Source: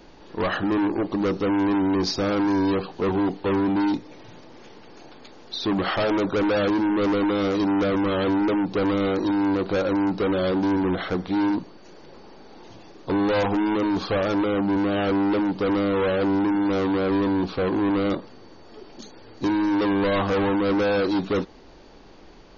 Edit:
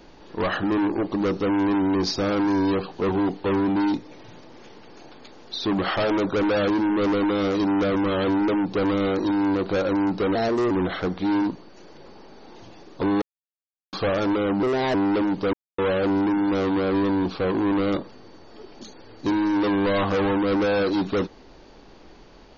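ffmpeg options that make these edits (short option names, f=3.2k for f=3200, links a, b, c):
-filter_complex "[0:a]asplit=9[a][b][c][d][e][f][g][h][i];[a]atrim=end=10.354[j];[b]atrim=start=10.35:end=10.79,asetpts=PTS-STARTPTS,asetrate=54243,aresample=44100[k];[c]atrim=start=10.786:end=13.3,asetpts=PTS-STARTPTS,afade=t=out:st=2.51:d=0.004:c=hsin[l];[d]atrim=start=13.3:end=14.01,asetpts=PTS-STARTPTS,volume=0[m];[e]atrim=start=14.01:end=14.714,asetpts=PTS-STARTPTS,afade=t=in:d=0.004:c=hsin[n];[f]atrim=start=14.71:end=15.12,asetpts=PTS-STARTPTS,asetrate=57330,aresample=44100,atrim=end_sample=13908,asetpts=PTS-STARTPTS[o];[g]atrim=start=15.116:end=15.71,asetpts=PTS-STARTPTS,afade=t=out:st=0.59:d=0.004:c=hsin[p];[h]atrim=start=15.71:end=15.96,asetpts=PTS-STARTPTS,volume=0[q];[i]atrim=start=15.96,asetpts=PTS-STARTPTS,afade=t=in:d=0.004:c=hsin[r];[j][k]acrossfade=d=0.004:c1=hsin:c2=hsin[s];[l][m][n]concat=n=3:v=0:a=1[t];[s][t]acrossfade=d=0.004:c1=hsin:c2=hsin[u];[u][o]acrossfade=d=0.004:c1=hsin:c2=hsin[v];[p][q][r]concat=n=3:v=0:a=1[w];[v][w]acrossfade=d=0.004:c1=hsin:c2=hsin"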